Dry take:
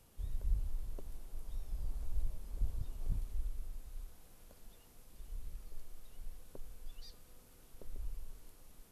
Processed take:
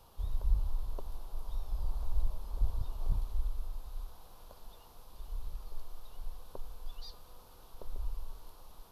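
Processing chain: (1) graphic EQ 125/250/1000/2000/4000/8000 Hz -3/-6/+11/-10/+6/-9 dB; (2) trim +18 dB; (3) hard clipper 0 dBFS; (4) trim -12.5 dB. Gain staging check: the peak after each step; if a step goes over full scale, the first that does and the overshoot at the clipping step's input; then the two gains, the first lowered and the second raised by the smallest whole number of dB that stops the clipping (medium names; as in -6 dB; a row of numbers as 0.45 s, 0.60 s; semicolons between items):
-23.0 dBFS, -5.0 dBFS, -5.0 dBFS, -17.5 dBFS; nothing clips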